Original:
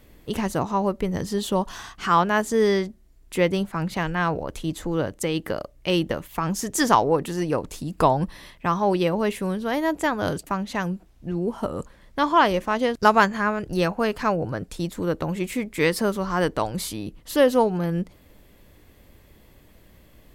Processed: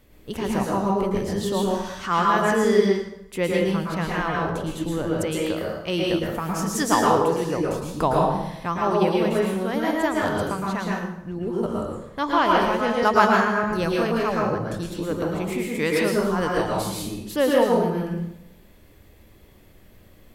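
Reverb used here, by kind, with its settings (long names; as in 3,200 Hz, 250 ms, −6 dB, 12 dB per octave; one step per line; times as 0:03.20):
dense smooth reverb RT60 0.81 s, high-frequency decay 0.8×, pre-delay 100 ms, DRR −3 dB
level −4 dB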